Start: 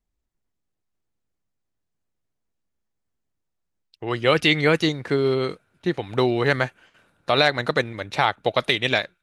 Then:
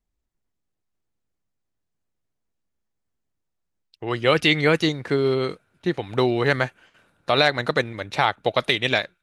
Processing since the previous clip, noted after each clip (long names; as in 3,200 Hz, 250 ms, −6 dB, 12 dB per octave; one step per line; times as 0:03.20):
no processing that can be heard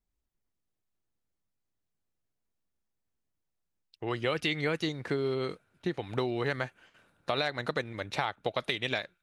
downward compressor 3 to 1, threshold −24 dBFS, peak gain reduction 9 dB
level −4.5 dB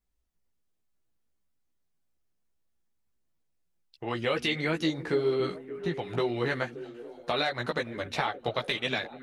multi-voice chorus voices 4, 1.1 Hz, delay 15 ms, depth 3 ms
echo through a band-pass that steps 287 ms, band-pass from 220 Hz, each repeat 0.7 octaves, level −9 dB
level +5 dB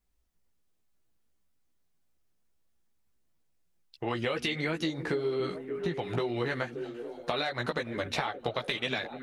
downward compressor, threshold −31 dBFS, peak gain reduction 9 dB
level +3.5 dB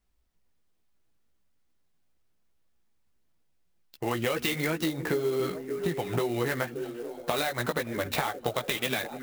converter with an unsteady clock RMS 0.029 ms
level +2.5 dB